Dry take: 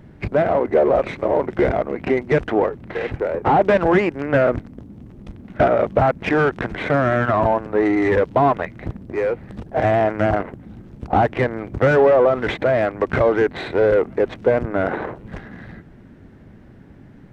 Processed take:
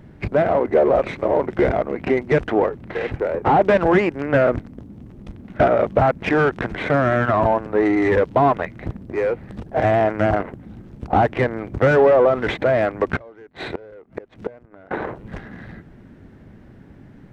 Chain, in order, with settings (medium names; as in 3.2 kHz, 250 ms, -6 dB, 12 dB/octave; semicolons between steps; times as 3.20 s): 13.16–14.91 s: inverted gate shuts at -13 dBFS, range -26 dB